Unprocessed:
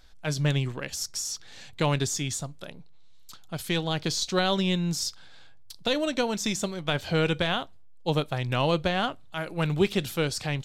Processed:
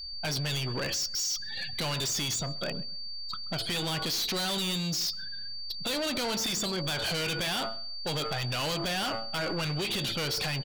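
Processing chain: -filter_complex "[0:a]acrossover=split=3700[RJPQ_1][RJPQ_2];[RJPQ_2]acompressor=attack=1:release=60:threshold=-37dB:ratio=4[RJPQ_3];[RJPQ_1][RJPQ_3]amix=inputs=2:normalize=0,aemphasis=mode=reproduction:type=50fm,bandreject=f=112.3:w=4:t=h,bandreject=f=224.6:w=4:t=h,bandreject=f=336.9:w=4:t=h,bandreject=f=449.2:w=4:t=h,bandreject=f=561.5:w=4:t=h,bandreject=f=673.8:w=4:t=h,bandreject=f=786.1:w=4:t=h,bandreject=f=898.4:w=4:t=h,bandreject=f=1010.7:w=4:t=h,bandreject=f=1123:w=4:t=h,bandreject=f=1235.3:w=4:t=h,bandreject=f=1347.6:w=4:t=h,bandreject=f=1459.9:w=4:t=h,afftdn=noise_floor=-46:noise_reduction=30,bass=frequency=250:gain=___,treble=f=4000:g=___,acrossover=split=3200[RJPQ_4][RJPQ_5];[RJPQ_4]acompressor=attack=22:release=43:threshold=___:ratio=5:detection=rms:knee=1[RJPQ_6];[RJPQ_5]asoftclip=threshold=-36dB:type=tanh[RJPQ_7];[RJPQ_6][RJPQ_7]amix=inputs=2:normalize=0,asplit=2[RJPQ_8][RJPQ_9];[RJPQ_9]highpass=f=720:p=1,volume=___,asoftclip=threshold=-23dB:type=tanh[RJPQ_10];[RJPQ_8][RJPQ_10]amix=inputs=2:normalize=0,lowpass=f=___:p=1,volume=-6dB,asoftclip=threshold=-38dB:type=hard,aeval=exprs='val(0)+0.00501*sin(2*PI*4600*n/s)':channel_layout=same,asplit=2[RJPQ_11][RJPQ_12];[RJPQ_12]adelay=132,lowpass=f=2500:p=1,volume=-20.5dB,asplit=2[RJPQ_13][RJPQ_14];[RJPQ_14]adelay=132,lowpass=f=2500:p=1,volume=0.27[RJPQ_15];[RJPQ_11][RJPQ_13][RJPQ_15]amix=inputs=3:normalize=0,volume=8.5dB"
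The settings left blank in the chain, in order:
3, 11, -38dB, 13dB, 7900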